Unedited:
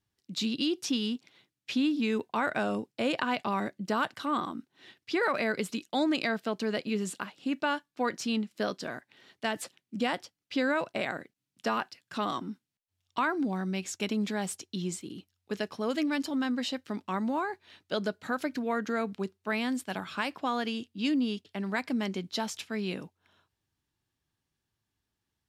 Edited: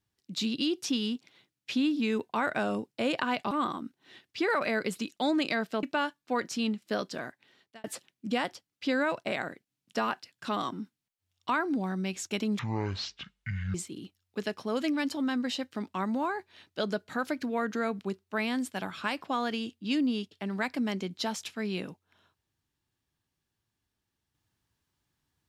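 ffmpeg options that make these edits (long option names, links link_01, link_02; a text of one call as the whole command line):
ffmpeg -i in.wav -filter_complex "[0:a]asplit=6[link_01][link_02][link_03][link_04][link_05][link_06];[link_01]atrim=end=3.512[link_07];[link_02]atrim=start=4.238:end=6.562[link_08];[link_03]atrim=start=7.518:end=9.53,asetpts=PTS-STARTPTS,afade=type=out:start_time=1.422:duration=0.59[link_09];[link_04]atrim=start=9.53:end=14.284,asetpts=PTS-STARTPTS,afade=type=in:duration=0.004:curve=hsin[link_10];[link_05]atrim=start=14.28:end=14.88,asetpts=PTS-STARTPTS,asetrate=22932,aresample=44100[link_11];[link_06]atrim=start=14.876[link_12];[link_07][link_08]acrossfade=duration=0.004:curve1=hsin:curve2=hsin[link_13];[link_09][link_10]concat=n=2:v=0:a=1[link_14];[link_13][link_14]acrossfade=duration=0.004:curve1=hsin:curve2=hsin[link_15];[link_15][link_11]acrossfade=duration=0.004:curve1=hsin:curve2=hsin[link_16];[link_16][link_12]acrossfade=duration=0.004:curve1=hsin:curve2=hsin" out.wav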